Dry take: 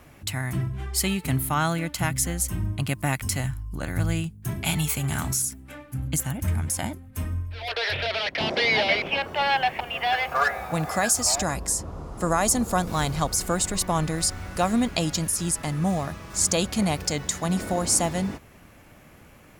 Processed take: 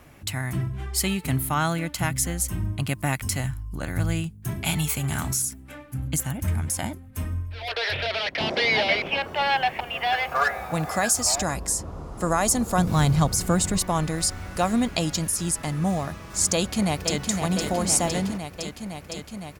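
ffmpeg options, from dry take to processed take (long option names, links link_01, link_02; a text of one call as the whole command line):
ffmpeg -i in.wav -filter_complex "[0:a]asettb=1/sr,asplit=3[link_01][link_02][link_03];[link_01]atrim=end=12.784[link_04];[link_02]atrim=start=12.78:end=13.79,asetpts=PTS-STARTPTS,afade=type=in:duration=0.004:curve=qsin,afade=type=out:start_time=1.006:duration=0.004:curve=qsin,equalizer=frequency=130:width=0.81:gain=9.5[link_05];[link_03]atrim=start=13.786[link_06];[link_04][link_05]acrossfade=duration=0.004:curve1=hsin:curve2=qsin[link_07];[link_07][link_06]acrossfade=duration=0.004:curve1=qsin:curve2=hsin,asplit=2[link_08][link_09];[link_09]afade=type=in:start_time=16.54:duration=0.01,afade=type=out:start_time=17.18:duration=0.01,aecho=0:1:510|1020|1530|2040|2550|3060|3570|4080|4590|5100|5610|6120:0.530884|0.424708|0.339766|0.271813|0.21745|0.17396|0.139168|0.111335|0.0890676|0.0712541|0.0570033|0.0456026[link_10];[link_08][link_10]amix=inputs=2:normalize=0" out.wav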